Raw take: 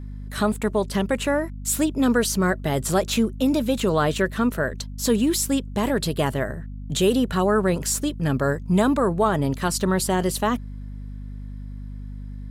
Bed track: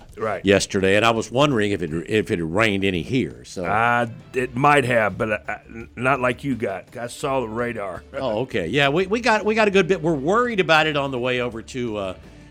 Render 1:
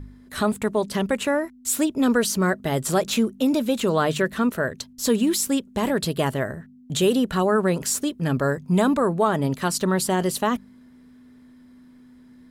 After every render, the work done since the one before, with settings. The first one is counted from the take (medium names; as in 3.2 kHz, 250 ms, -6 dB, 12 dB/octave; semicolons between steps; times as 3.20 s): de-hum 50 Hz, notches 4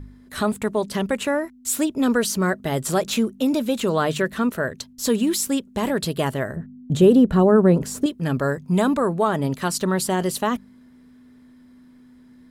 6.56–8.06 s: tilt shelf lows +8.5 dB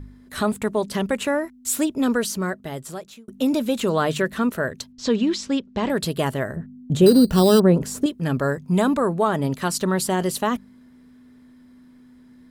1.91–3.28 s: fade out; 4.92–5.90 s: low-pass 5.5 kHz 24 dB/octave; 7.06–7.60 s: sample-rate reducer 4.4 kHz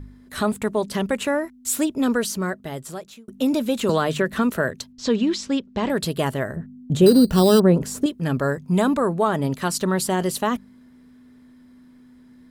3.89–4.71 s: three bands compressed up and down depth 100%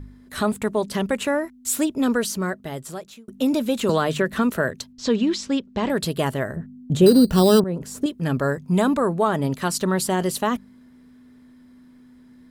7.64–8.19 s: fade in, from -15 dB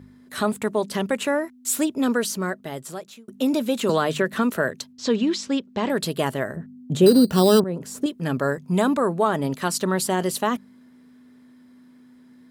Bessel high-pass 160 Hz, order 2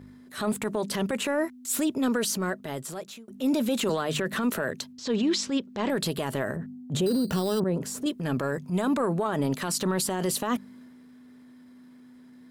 transient shaper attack -9 dB, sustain +3 dB; peak limiter -18 dBFS, peak gain reduction 11.5 dB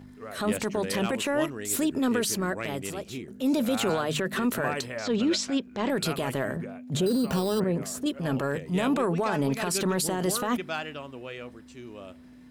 add bed track -17 dB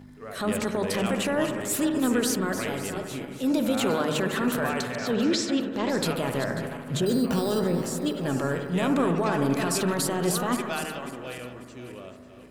backward echo that repeats 271 ms, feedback 55%, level -10 dB; bucket-brigade echo 73 ms, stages 1024, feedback 72%, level -9 dB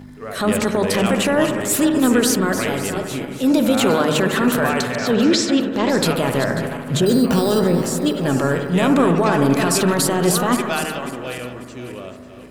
trim +8.5 dB